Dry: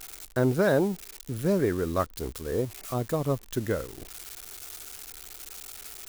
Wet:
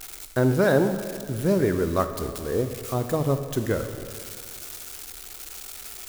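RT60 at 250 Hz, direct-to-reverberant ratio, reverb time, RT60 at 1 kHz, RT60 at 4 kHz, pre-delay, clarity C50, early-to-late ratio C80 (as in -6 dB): 2.2 s, 8.0 dB, 2.2 s, 2.2 s, 2.1 s, 8 ms, 9.0 dB, 9.5 dB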